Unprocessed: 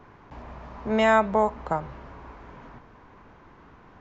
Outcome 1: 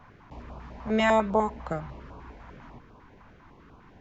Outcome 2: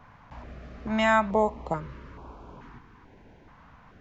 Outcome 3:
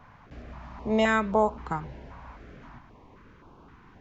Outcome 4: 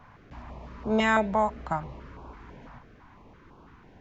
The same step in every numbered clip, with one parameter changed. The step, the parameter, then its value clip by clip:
stepped notch, rate: 10, 2.3, 3.8, 6 Hz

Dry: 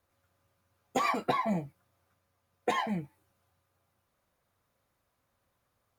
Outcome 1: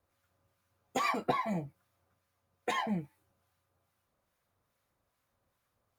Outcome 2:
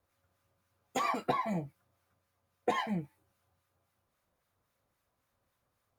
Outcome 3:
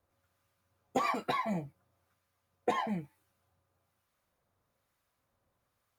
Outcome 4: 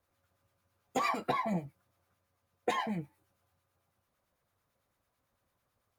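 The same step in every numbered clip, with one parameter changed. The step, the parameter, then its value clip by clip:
harmonic tremolo, rate: 2.4, 3.7, 1.1, 9 Hz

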